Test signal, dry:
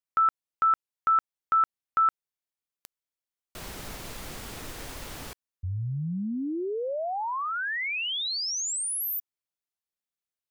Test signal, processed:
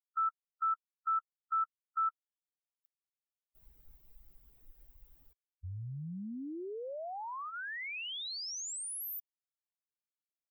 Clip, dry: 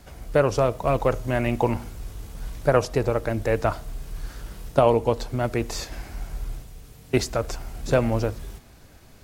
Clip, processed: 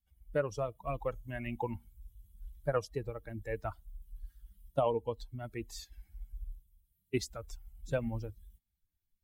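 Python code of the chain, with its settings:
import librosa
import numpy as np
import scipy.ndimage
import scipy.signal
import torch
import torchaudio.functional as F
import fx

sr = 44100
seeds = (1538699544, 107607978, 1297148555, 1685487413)

y = fx.bin_expand(x, sr, power=2.0)
y = y * 10.0 ** (-9.0 / 20.0)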